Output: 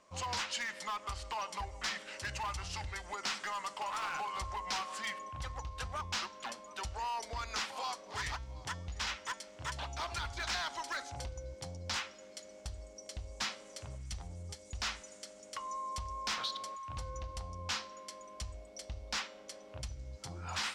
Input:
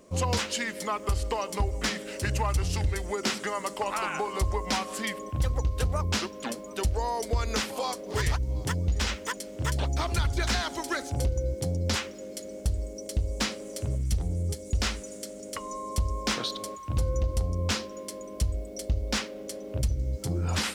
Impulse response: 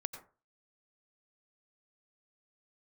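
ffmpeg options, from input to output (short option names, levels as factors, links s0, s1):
-filter_complex "[0:a]lowpass=6200,lowshelf=f=610:t=q:w=1.5:g=-12,acrossover=split=3600[s0][s1];[s0]volume=33.5,asoftclip=hard,volume=0.0299[s2];[s2][s1]amix=inputs=2:normalize=0,bandreject=f=225.5:t=h:w=4,bandreject=f=451:t=h:w=4,bandreject=f=676.5:t=h:w=4,bandreject=f=902:t=h:w=4,bandreject=f=1127.5:t=h:w=4,bandreject=f=1353:t=h:w=4,bandreject=f=1578.5:t=h:w=4,bandreject=f=1804:t=h:w=4,bandreject=f=2029.5:t=h:w=4,bandreject=f=2255:t=h:w=4,bandreject=f=2480.5:t=h:w=4,bandreject=f=2706:t=h:w=4,bandreject=f=2931.5:t=h:w=4,bandreject=f=3157:t=h:w=4,bandreject=f=3382.5:t=h:w=4,bandreject=f=3608:t=h:w=4,bandreject=f=3833.5:t=h:w=4,bandreject=f=4059:t=h:w=4,bandreject=f=4284.5:t=h:w=4,bandreject=f=4510:t=h:w=4,bandreject=f=4735.5:t=h:w=4,bandreject=f=4961:t=h:w=4,bandreject=f=5186.5:t=h:w=4,bandreject=f=5412:t=h:w=4,bandreject=f=5637.5:t=h:w=4,bandreject=f=5863:t=h:w=4,bandreject=f=6088.5:t=h:w=4,bandreject=f=6314:t=h:w=4,bandreject=f=6539.5:t=h:w=4,bandreject=f=6765:t=h:w=4,bandreject=f=6990.5:t=h:w=4,bandreject=f=7216:t=h:w=4,bandreject=f=7441.5:t=h:w=4,bandreject=f=7667:t=h:w=4,bandreject=f=7892.5:t=h:w=4,bandreject=f=8118:t=h:w=4,bandreject=f=8343.5:t=h:w=4,bandreject=f=8569:t=h:w=4,volume=0.596"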